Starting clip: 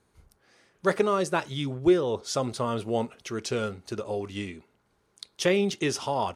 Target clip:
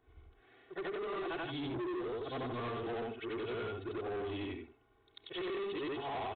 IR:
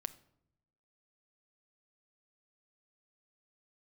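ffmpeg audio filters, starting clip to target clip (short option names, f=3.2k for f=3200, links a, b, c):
-filter_complex "[0:a]afftfilt=real='re':imag='-im':win_size=8192:overlap=0.75,lowshelf=f=480:g=-6,aecho=1:1:2.7:0.87,acrossover=split=590|1300[a][b][c];[a]acontrast=57[d];[d][b][c]amix=inputs=3:normalize=0,alimiter=limit=-22dB:level=0:latency=1:release=416,aresample=8000,asoftclip=type=tanh:threshold=-37dB,aresample=44100,volume=1dB"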